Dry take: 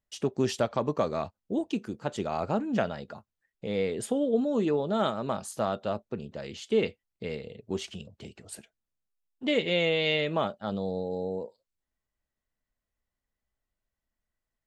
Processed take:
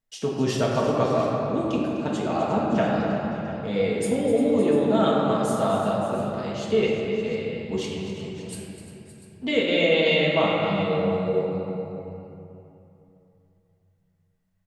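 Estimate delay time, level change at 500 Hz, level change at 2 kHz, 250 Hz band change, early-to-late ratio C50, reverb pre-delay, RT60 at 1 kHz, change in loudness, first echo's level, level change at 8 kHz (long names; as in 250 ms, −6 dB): 253 ms, +7.0 dB, +6.5 dB, +7.0 dB, −1.5 dB, 4 ms, 3.0 s, +6.0 dB, −10.5 dB, +4.0 dB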